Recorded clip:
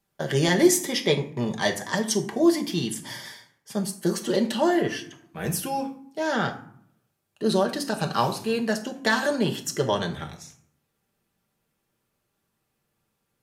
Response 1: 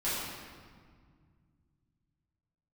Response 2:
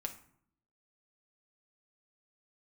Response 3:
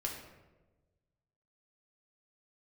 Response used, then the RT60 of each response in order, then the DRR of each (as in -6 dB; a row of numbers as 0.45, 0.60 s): 2; 1.9, 0.60, 1.2 s; -12.0, 2.0, -1.0 dB